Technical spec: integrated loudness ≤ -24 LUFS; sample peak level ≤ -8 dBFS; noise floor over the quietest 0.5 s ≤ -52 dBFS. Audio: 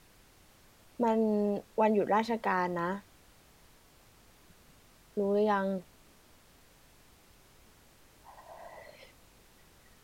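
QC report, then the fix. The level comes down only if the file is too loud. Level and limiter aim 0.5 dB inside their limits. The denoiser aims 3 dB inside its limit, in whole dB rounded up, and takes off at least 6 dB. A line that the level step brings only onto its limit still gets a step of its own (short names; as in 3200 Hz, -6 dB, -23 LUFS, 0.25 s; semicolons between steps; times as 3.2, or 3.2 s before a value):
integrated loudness -30.5 LUFS: OK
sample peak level -14.5 dBFS: OK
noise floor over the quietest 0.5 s -61 dBFS: OK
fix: none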